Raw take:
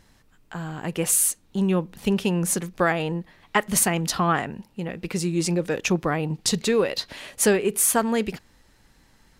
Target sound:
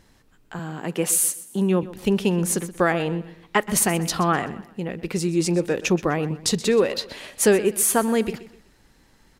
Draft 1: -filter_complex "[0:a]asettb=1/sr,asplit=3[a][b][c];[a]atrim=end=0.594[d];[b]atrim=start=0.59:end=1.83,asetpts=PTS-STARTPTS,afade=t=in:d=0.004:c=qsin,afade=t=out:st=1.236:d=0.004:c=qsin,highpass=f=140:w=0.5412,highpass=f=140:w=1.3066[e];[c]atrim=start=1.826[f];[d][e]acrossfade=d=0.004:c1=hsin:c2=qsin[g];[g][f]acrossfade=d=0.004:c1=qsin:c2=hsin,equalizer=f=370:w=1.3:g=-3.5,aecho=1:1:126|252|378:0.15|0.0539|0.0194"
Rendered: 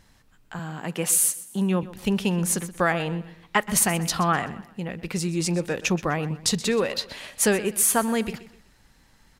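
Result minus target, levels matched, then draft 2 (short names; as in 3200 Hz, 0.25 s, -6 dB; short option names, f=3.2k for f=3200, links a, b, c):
500 Hz band -3.5 dB
-filter_complex "[0:a]asettb=1/sr,asplit=3[a][b][c];[a]atrim=end=0.594[d];[b]atrim=start=0.59:end=1.83,asetpts=PTS-STARTPTS,afade=t=in:d=0.004:c=qsin,afade=t=out:st=1.236:d=0.004:c=qsin,highpass=f=140:w=0.5412,highpass=f=140:w=1.3066[e];[c]atrim=start=1.826[f];[d][e]acrossfade=d=0.004:c1=hsin:c2=qsin[g];[g][f]acrossfade=d=0.004:c1=qsin:c2=hsin,equalizer=f=370:w=1.3:g=3.5,aecho=1:1:126|252|378:0.15|0.0539|0.0194"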